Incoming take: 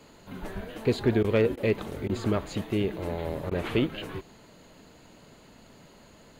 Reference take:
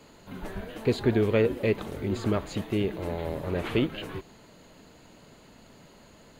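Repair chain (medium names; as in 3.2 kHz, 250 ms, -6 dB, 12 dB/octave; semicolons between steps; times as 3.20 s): clip repair -13.5 dBFS; interpolate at 1.23/1.56/2.08/3.50 s, 12 ms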